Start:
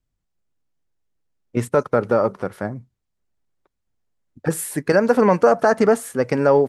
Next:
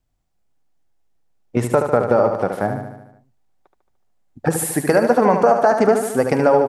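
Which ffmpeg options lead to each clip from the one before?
ffmpeg -i in.wav -filter_complex "[0:a]equalizer=frequency=760:width_type=o:width=0.51:gain=8.5,acompressor=threshold=-18dB:ratio=2.5,asplit=2[link_01][link_02];[link_02]aecho=0:1:74|148|222|296|370|444|518:0.447|0.259|0.15|0.0872|0.0505|0.0293|0.017[link_03];[link_01][link_03]amix=inputs=2:normalize=0,volume=4dB" out.wav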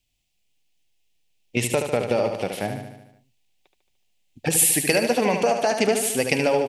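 ffmpeg -i in.wav -af "highshelf=frequency=1900:width_type=q:width=3:gain=12,volume=-5.5dB" out.wav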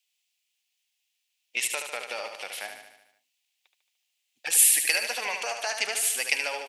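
ffmpeg -i in.wav -af "highpass=1400" out.wav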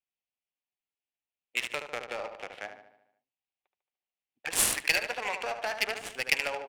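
ffmpeg -i in.wav -af "adynamicsmooth=sensitivity=2.5:basefreq=960" out.wav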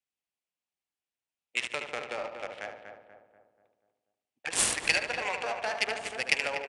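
ffmpeg -i in.wav -filter_complex "[0:a]highpass=41,asplit=2[link_01][link_02];[link_02]adelay=242,lowpass=frequency=1500:poles=1,volume=-6dB,asplit=2[link_03][link_04];[link_04]adelay=242,lowpass=frequency=1500:poles=1,volume=0.5,asplit=2[link_05][link_06];[link_06]adelay=242,lowpass=frequency=1500:poles=1,volume=0.5,asplit=2[link_07][link_08];[link_08]adelay=242,lowpass=frequency=1500:poles=1,volume=0.5,asplit=2[link_09][link_10];[link_10]adelay=242,lowpass=frequency=1500:poles=1,volume=0.5,asplit=2[link_11][link_12];[link_12]adelay=242,lowpass=frequency=1500:poles=1,volume=0.5[link_13];[link_03][link_05][link_07][link_09][link_11][link_13]amix=inputs=6:normalize=0[link_14];[link_01][link_14]amix=inputs=2:normalize=0,aresample=22050,aresample=44100" out.wav

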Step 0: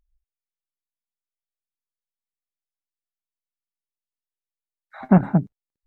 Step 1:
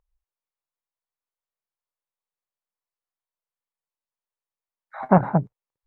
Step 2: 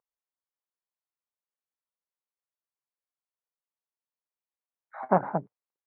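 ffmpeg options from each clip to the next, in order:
ffmpeg -i in.wav -af "equalizer=frequency=125:width_type=o:width=1:gain=8,equalizer=frequency=250:width_type=o:width=1:gain=-4,equalizer=frequency=500:width_type=o:width=1:gain=10,equalizer=frequency=1000:width_type=o:width=1:gain=12,equalizer=frequency=2000:width_type=o:width=1:gain=4,volume=-6.5dB" out.wav
ffmpeg -i in.wav -af "highpass=270,lowpass=2100,volume=-4.5dB" out.wav

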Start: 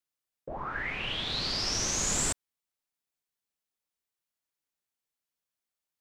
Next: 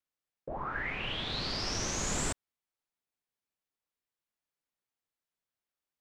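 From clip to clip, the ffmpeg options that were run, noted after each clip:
ffmpeg -i in.wav -af "highshelf=frequency=3800:gain=-8.5" out.wav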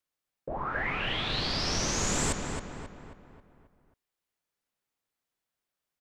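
ffmpeg -i in.wav -filter_complex "[0:a]asplit=2[link_01][link_02];[link_02]adelay=269,lowpass=frequency=3000:poles=1,volume=-4.5dB,asplit=2[link_03][link_04];[link_04]adelay=269,lowpass=frequency=3000:poles=1,volume=0.5,asplit=2[link_05][link_06];[link_06]adelay=269,lowpass=frequency=3000:poles=1,volume=0.5,asplit=2[link_07][link_08];[link_08]adelay=269,lowpass=frequency=3000:poles=1,volume=0.5,asplit=2[link_09][link_10];[link_10]adelay=269,lowpass=frequency=3000:poles=1,volume=0.5,asplit=2[link_11][link_12];[link_12]adelay=269,lowpass=frequency=3000:poles=1,volume=0.5[link_13];[link_01][link_03][link_05][link_07][link_09][link_11][link_13]amix=inputs=7:normalize=0,volume=3.5dB" out.wav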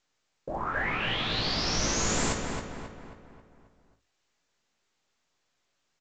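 ffmpeg -i in.wav -af "bandreject=frequency=50:width_type=h:width=6,bandreject=frequency=100:width_type=h:width=6,aecho=1:1:18|53|71:0.631|0.282|0.133" -ar 16000 -c:a pcm_mulaw out.wav

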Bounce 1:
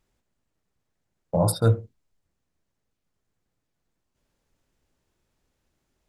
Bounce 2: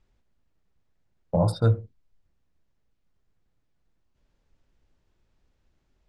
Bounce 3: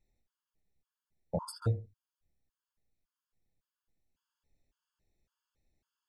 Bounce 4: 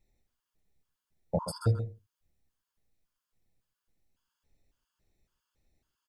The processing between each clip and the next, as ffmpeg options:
ffmpeg -i in.wav -af "lowpass=5300,lowshelf=frequency=80:gain=10.5,alimiter=limit=-12dB:level=0:latency=1:release=494" out.wav
ffmpeg -i in.wav -af "aemphasis=mode=production:type=cd,bandreject=frequency=50:width_type=h:width=6,bandreject=frequency=100:width_type=h:width=6,afftfilt=real='re*gt(sin(2*PI*1.8*pts/sr)*(1-2*mod(floor(b*sr/1024/880),2)),0)':imag='im*gt(sin(2*PI*1.8*pts/sr)*(1-2*mod(floor(b*sr/1024/880),2)),0)':win_size=1024:overlap=0.75,volume=-8dB" out.wav
ffmpeg -i in.wav -af "aecho=1:1:129:0.299,volume=4dB" out.wav

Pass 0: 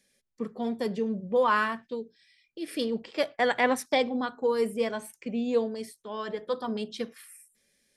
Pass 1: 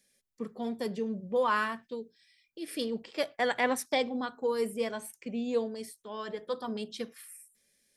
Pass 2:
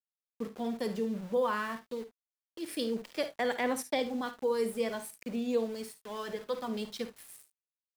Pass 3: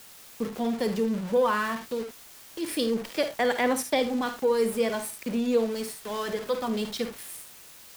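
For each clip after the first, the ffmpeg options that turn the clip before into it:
ffmpeg -i in.wav -af "highshelf=frequency=6200:gain=7,volume=-4dB" out.wav
ffmpeg -i in.wav -filter_complex "[0:a]acrossover=split=490[link_01][link_02];[link_02]acompressor=threshold=-33dB:ratio=2.5[link_03];[link_01][link_03]amix=inputs=2:normalize=0,aeval=exprs='val(0)*gte(abs(val(0)),0.00501)':channel_layout=same,aecho=1:1:53|73:0.251|0.141" out.wav
ffmpeg -i in.wav -af "aeval=exprs='val(0)+0.5*0.0075*sgn(val(0))':channel_layout=same,volume=5.5dB" out.wav

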